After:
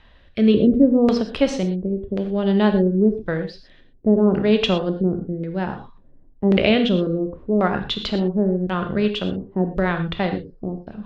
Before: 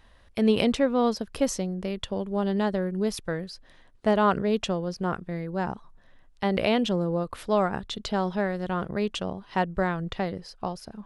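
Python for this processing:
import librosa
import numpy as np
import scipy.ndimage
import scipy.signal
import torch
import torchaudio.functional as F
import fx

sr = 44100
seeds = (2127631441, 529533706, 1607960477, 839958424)

y = fx.filter_lfo_lowpass(x, sr, shape='square', hz=0.92, low_hz=360.0, high_hz=3300.0, q=1.6)
y = fx.rotary_switch(y, sr, hz=0.6, then_hz=6.0, switch_at_s=7.04)
y = fx.rev_gated(y, sr, seeds[0], gate_ms=140, shape='flat', drr_db=6.0)
y = y * librosa.db_to_amplitude(7.0)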